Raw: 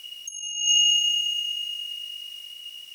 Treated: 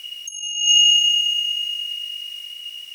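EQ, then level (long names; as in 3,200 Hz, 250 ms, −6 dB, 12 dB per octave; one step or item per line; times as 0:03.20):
parametric band 2,200 Hz +5 dB 0.94 octaves
+3.0 dB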